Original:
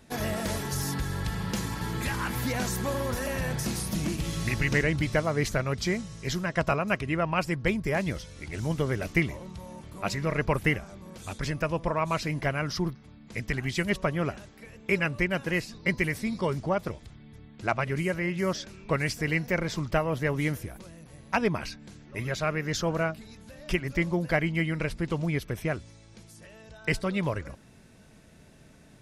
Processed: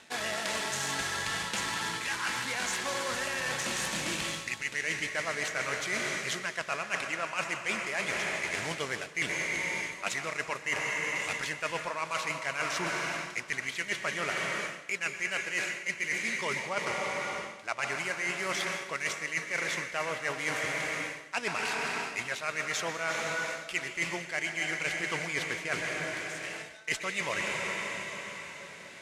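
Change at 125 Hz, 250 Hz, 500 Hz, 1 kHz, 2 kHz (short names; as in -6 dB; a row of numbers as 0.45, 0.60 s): -16.5, -12.5, -7.0, -1.5, +2.0 dB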